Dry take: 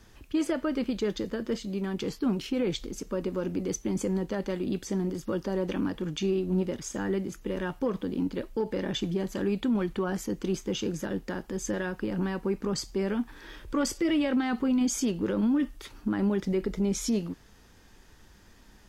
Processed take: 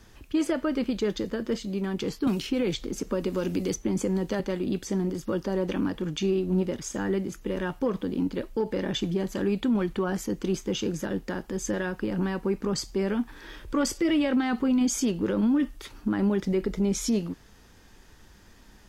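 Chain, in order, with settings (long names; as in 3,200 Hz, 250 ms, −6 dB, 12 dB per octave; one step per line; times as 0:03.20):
0:02.27–0:04.40: multiband upward and downward compressor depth 70%
level +2 dB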